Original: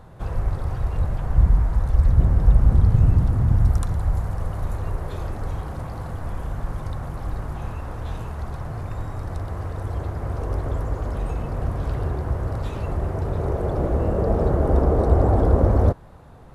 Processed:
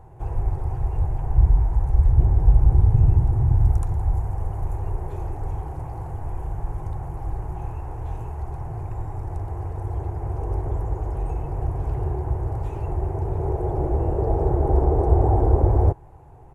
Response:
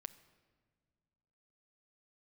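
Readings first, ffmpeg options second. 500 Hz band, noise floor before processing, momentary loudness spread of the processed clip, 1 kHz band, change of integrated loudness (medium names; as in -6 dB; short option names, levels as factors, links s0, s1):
-2.0 dB, -35 dBFS, 14 LU, +0.5 dB, -0.5 dB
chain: -af "firequalizer=gain_entry='entry(140,0);entry(200,-15);entry(360,3);entry(560,-8);entry(820,4);entry(1200,-11);entry(2500,-7);entry(3700,-19);entry(6600,-7)':delay=0.05:min_phase=1"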